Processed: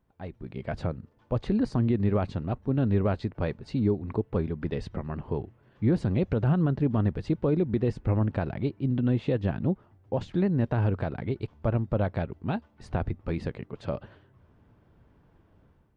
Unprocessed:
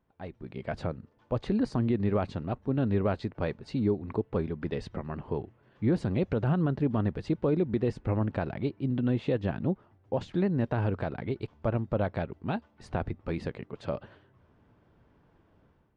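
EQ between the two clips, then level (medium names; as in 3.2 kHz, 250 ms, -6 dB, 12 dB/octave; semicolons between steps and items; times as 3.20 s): bass shelf 150 Hz +6.5 dB; 0.0 dB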